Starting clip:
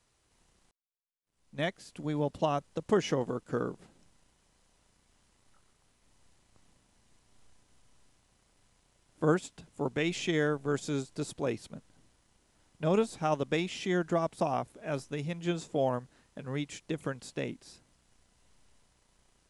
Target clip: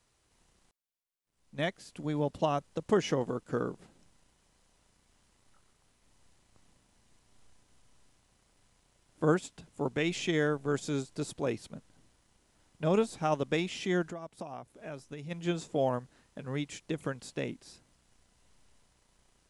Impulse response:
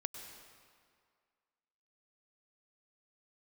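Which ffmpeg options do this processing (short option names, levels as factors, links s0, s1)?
-filter_complex "[0:a]asplit=3[s0][s1][s2];[s0]afade=t=out:st=14.1:d=0.02[s3];[s1]acompressor=threshold=0.01:ratio=5,afade=t=in:st=14.1:d=0.02,afade=t=out:st=15.3:d=0.02[s4];[s2]afade=t=in:st=15.3:d=0.02[s5];[s3][s4][s5]amix=inputs=3:normalize=0"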